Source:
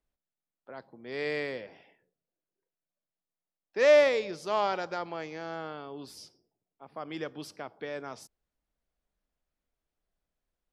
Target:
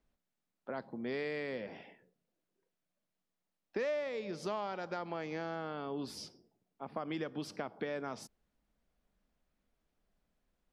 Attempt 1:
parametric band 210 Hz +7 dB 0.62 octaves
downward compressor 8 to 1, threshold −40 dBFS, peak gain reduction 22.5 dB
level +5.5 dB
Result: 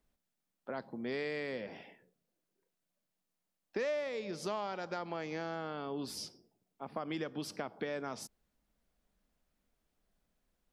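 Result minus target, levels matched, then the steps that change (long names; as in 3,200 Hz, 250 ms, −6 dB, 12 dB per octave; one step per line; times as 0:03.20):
8,000 Hz band +4.5 dB
add after downward compressor: high-shelf EQ 6,200 Hz −9 dB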